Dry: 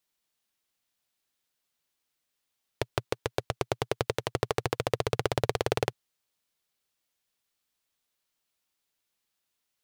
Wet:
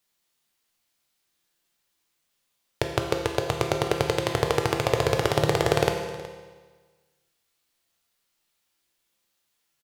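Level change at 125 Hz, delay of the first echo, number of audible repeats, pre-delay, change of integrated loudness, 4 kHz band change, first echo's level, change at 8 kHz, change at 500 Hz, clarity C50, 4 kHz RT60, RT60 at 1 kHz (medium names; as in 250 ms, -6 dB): +6.5 dB, 370 ms, 1, 6 ms, +6.5 dB, +6.5 dB, -18.0 dB, +6.5 dB, +6.5 dB, 5.0 dB, 1.4 s, 1.4 s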